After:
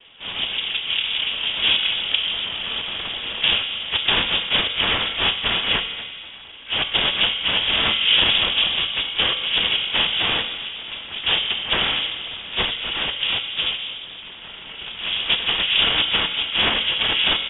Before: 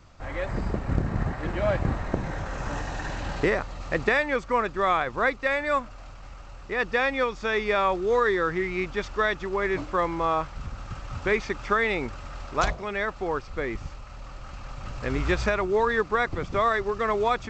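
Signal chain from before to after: band-stop 2.7 kHz, Q 7.4; de-hum 139.9 Hz, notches 3; in parallel at -0.5 dB: compression 6:1, threshold -32 dBFS, peak gain reduction 14 dB; on the sum: feedback delay 244 ms, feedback 23%, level -16.5 dB; noise-vocoded speech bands 2; on a send at -5.5 dB: reverberation RT60 2.0 s, pre-delay 3 ms; on the sum: harmony voices +12 st -13 dB; frequency inversion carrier 3.6 kHz; trim +2 dB

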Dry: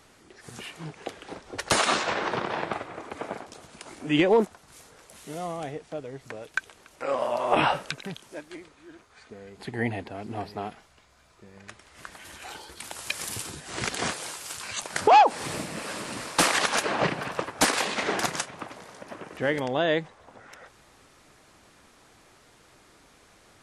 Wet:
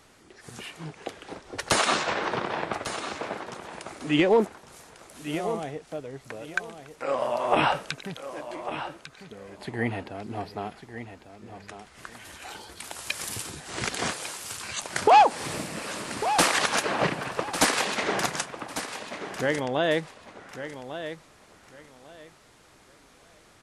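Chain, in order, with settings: feedback delay 1149 ms, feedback 22%, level -11 dB

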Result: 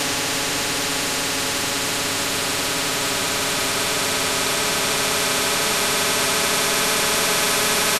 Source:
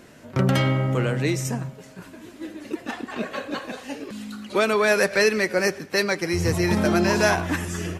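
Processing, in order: Paulstretch 14×, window 1.00 s, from 4.04 s; comb 7.1 ms, depth 93%; spectrum-flattening compressor 4:1

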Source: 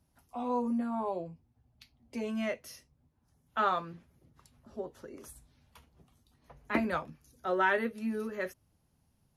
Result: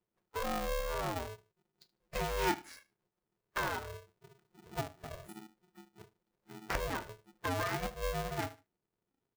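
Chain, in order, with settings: median filter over 15 samples; spectral noise reduction 24 dB; 4.85–5.29 s: feedback comb 88 Hz, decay 0.15 s, harmonics all, mix 80%; on a send: feedback delay 75 ms, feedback 16%, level -20 dB; on the sum: dynamic bell 340 Hz, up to +4 dB, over -45 dBFS, Q 1.6; compression 4:1, threshold -44 dBFS, peak gain reduction 17.5 dB; 2.11–3.22 s: time-frequency box 550–11000 Hz +7 dB; polarity switched at an audio rate 270 Hz; trim +8.5 dB

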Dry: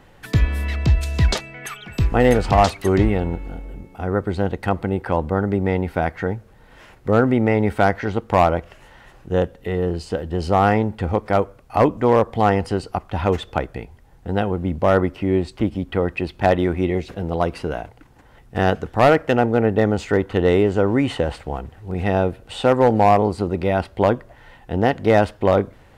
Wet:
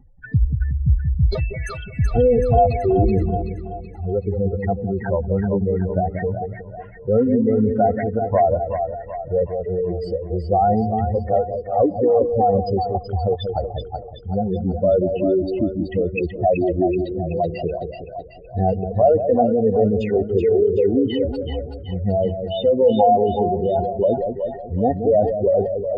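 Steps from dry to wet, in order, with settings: spectral contrast enhancement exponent 3.8; two-band feedback delay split 620 Hz, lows 183 ms, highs 378 ms, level -6 dB

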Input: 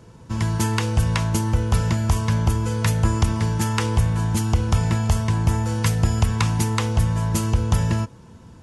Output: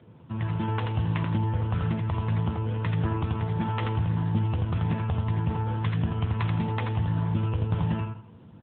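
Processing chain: on a send: feedback delay 84 ms, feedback 30%, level -5 dB; on the sum: trim -5 dB; AMR-NB 7.95 kbps 8 kHz

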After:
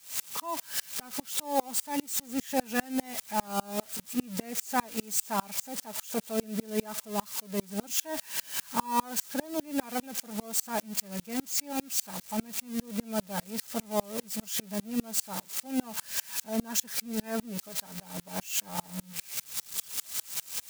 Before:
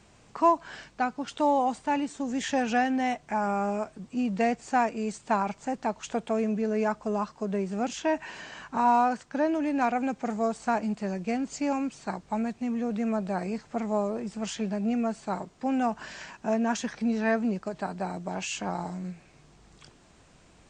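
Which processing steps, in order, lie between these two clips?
zero-crossing glitches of -19.5 dBFS; comb of notches 360 Hz; sawtooth tremolo in dB swelling 5 Hz, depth 32 dB; trim +3.5 dB

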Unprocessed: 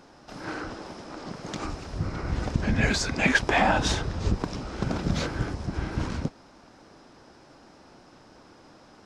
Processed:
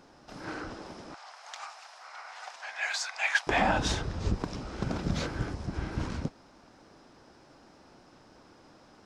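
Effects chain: 1.14–3.47 s: Chebyshev high-pass 730 Hz, order 4; trim -4 dB

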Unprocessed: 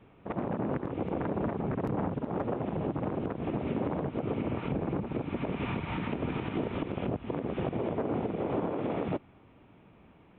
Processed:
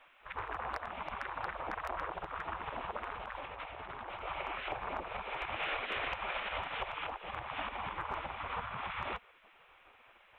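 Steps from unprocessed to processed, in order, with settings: spectral gate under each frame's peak -15 dB weak; 3.11–4.25 s: compressor with a negative ratio -51 dBFS, ratio -1; hard clipper -32 dBFS, distortion -29 dB; trim +6.5 dB

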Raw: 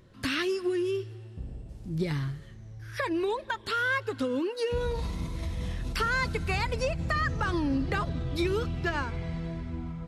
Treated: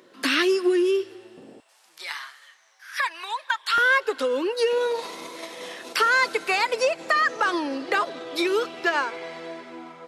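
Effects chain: high-pass 280 Hz 24 dB/octave, from 1.60 s 940 Hz, from 3.78 s 380 Hz; trim +8.5 dB

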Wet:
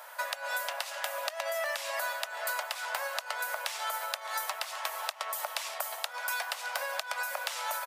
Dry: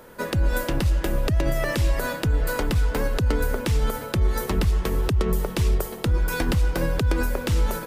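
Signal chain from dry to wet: steep high-pass 600 Hz 72 dB/octave; compression, threshold -34 dBFS, peak gain reduction 9.5 dB; on a send: delay 615 ms -18.5 dB; on the sum: trim +3.5 dB

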